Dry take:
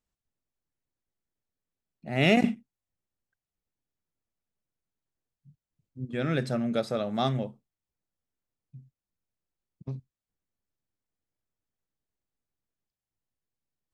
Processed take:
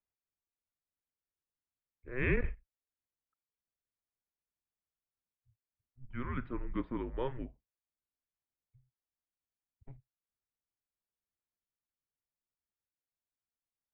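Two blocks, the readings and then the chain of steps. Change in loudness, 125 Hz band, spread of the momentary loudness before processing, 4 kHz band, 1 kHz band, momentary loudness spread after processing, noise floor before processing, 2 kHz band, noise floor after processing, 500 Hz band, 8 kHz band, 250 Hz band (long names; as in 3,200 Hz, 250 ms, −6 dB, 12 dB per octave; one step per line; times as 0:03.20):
−10.5 dB, −10.0 dB, 19 LU, −24.0 dB, −12.5 dB, 15 LU, below −85 dBFS, −7.5 dB, below −85 dBFS, −10.5 dB, below −25 dB, −12.0 dB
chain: single-sideband voice off tune −260 Hz 190–2,700 Hz
level −7 dB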